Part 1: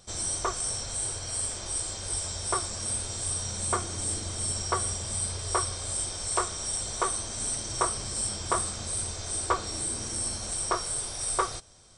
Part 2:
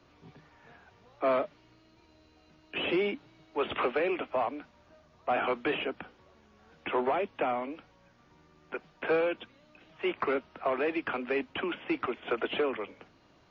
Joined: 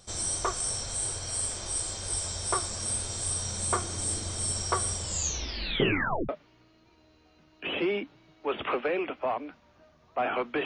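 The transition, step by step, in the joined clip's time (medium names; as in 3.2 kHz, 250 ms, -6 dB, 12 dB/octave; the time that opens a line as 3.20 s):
part 1
4.99 s: tape stop 1.30 s
6.29 s: go over to part 2 from 1.40 s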